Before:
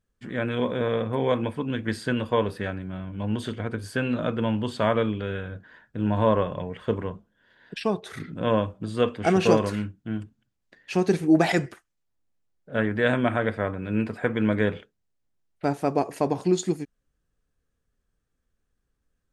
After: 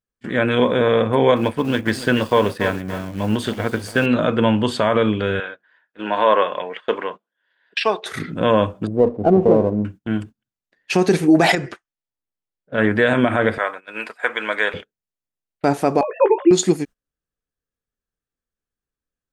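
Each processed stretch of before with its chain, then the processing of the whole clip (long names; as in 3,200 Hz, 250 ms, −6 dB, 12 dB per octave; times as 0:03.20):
0:01.36–0:04.06: mu-law and A-law mismatch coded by A + feedback echo at a low word length 285 ms, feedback 35%, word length 7 bits, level −13 dB
0:05.40–0:08.06: band-pass filter 300–3,000 Hz + spectral tilt +3.5 dB per octave
0:08.87–0:09.85: inverse Chebyshev low-pass filter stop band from 1,500 Hz + windowed peak hold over 5 samples
0:11.55–0:12.78: low-pass filter 5,800 Hz + downward compressor 2 to 1, threshold −32 dBFS
0:13.58–0:14.74: high-pass filter 850 Hz + high-shelf EQ 9,600 Hz +3.5 dB
0:16.01–0:16.51: three sine waves on the formant tracks + double-tracking delay 18 ms −7.5 dB
whole clip: noise gate −41 dBFS, range −20 dB; low-shelf EQ 190 Hz −7.5 dB; boost into a limiter +15 dB; level −3.5 dB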